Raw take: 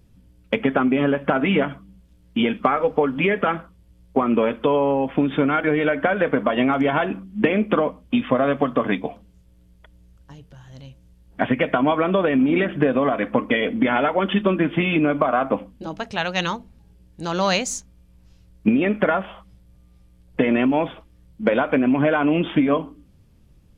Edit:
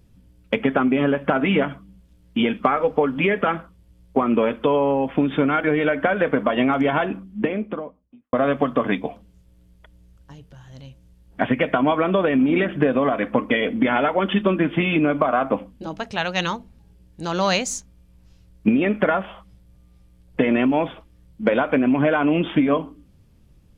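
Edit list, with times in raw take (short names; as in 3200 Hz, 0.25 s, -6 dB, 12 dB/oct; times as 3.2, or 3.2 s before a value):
6.89–8.33 studio fade out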